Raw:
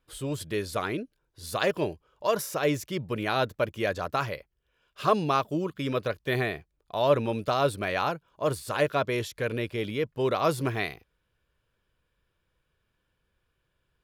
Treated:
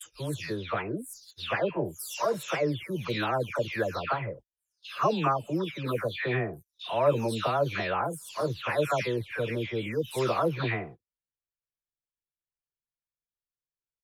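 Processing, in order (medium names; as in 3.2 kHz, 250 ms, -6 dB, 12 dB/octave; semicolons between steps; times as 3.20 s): delay that grows with frequency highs early, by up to 398 ms; gate -44 dBFS, range -29 dB; treble shelf 11 kHz -4 dB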